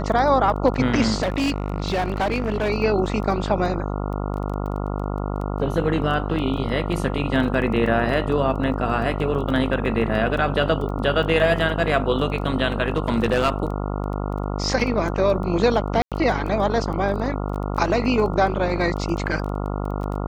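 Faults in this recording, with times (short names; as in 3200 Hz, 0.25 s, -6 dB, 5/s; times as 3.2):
buzz 50 Hz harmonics 28 -26 dBFS
crackle 11/s -29 dBFS
1.22–2.7 clipped -18 dBFS
6.57–6.58 gap 5.3 ms
12.88–13.5 clipped -13.5 dBFS
16.02–16.12 gap 97 ms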